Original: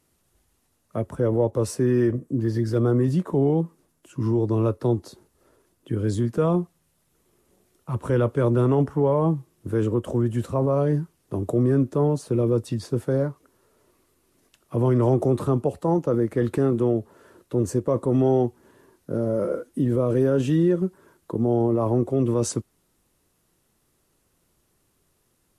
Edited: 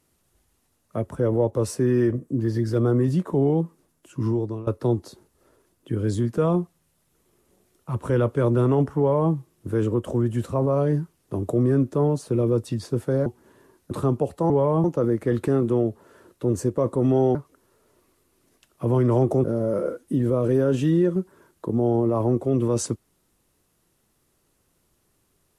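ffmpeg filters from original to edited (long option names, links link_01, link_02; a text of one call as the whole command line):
ffmpeg -i in.wav -filter_complex "[0:a]asplit=8[link_01][link_02][link_03][link_04][link_05][link_06][link_07][link_08];[link_01]atrim=end=4.67,asetpts=PTS-STARTPTS,afade=type=out:start_time=4.27:duration=0.4:silence=0.1[link_09];[link_02]atrim=start=4.67:end=13.262,asetpts=PTS-STARTPTS,afade=type=in:duration=0.004:curve=hsin:silence=0.1[link_10];[link_03]atrim=start=18.448:end=19.102[link_11];[link_04]atrim=start=15.348:end=15.942[link_12];[link_05]atrim=start=8.978:end=9.322[link_13];[link_06]atrim=start=15.938:end=18.452[link_14];[link_07]atrim=start=13.258:end=15.352[link_15];[link_08]atrim=start=19.098[link_16];[link_09][link_10]concat=n=2:v=0:a=1[link_17];[link_17][link_11]acrossfade=duration=0.004:curve1=hsin:curve2=hsin[link_18];[link_18][link_12]acrossfade=duration=0.004:curve1=hsin:curve2=hsin[link_19];[link_19][link_13]acrossfade=duration=0.004:curve1=hsin:curve2=hsin[link_20];[link_20][link_14]acrossfade=duration=0.004:curve1=hsin:curve2=hsin[link_21];[link_21][link_15]acrossfade=duration=0.004:curve1=hsin:curve2=hsin[link_22];[link_22][link_16]acrossfade=duration=0.004:curve1=hsin:curve2=hsin" out.wav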